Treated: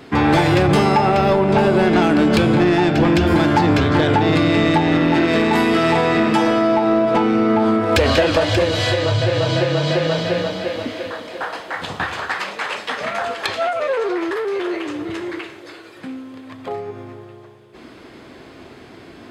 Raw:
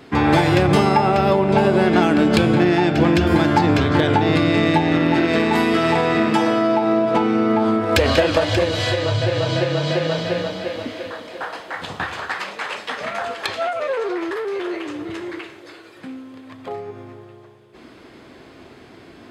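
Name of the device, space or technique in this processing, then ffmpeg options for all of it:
saturation between pre-emphasis and de-emphasis: -af "highshelf=f=7.1k:g=10.5,asoftclip=type=tanh:threshold=-10.5dB,highshelf=f=7.1k:g=-10.5,volume=3dB"

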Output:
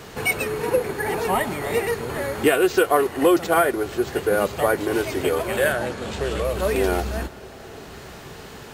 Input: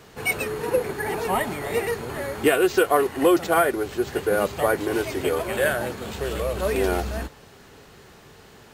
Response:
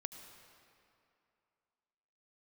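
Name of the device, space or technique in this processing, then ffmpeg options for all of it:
ducked reverb: -filter_complex "[0:a]asettb=1/sr,asplit=3[a][b][c];[a]atrim=end=5.724[d];[b]atrim=start=5.72:end=6.45,asetpts=PTS-STARTPTS,afade=t=in:d=0.004:c=qsin,afade=t=out:st=0.726:d=0.004:c=qsin,lowpass=8.8k[e];[c]atrim=start=6.446[f];[d][e]acrossfade=d=0.004:c1=hsin:c2=qsin[g];[g][f]acrossfade=d=0.004:c1=qsin:c2=hsin,asplit=3[h][i][j];[1:a]atrim=start_sample=2205[k];[i][k]afir=irnorm=-1:irlink=0[l];[j]apad=whole_len=385073[m];[l][m]sidechaincompress=threshold=-37dB:ratio=8:attack=16:release=743,volume=8dB[n];[h][n]amix=inputs=2:normalize=0"

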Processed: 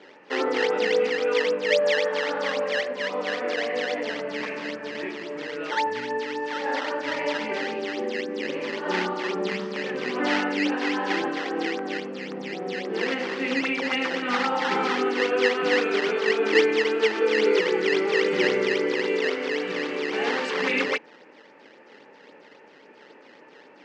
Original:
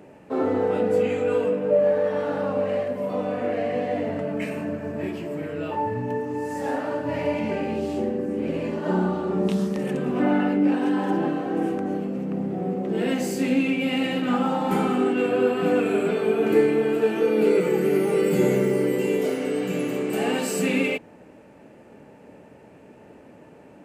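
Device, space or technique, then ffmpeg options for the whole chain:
circuit-bent sampling toy: -af "acrusher=samples=11:mix=1:aa=0.000001:lfo=1:lforange=17.6:lforate=3.7,highpass=490,equalizer=f=660:t=q:w=4:g=-10,equalizer=f=1.9k:t=q:w=4:g=4,equalizer=f=3.8k:t=q:w=4:g=-4,lowpass=f=4.7k:w=0.5412,lowpass=f=4.7k:w=1.3066,volume=4dB"

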